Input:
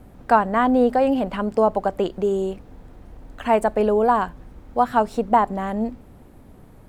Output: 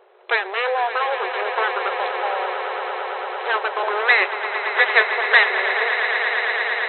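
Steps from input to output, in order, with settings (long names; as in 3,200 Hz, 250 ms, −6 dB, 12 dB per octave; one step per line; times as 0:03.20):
0:03.90–0:05.45: graphic EQ with 10 bands 500 Hz −6 dB, 1,000 Hz +10 dB, 2,000 Hz +7 dB
full-wave rectification
brick-wall band-pass 360–4,100 Hz
on a send: echo that builds up and dies away 113 ms, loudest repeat 8, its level −12 dB
on the sum: level +2 dB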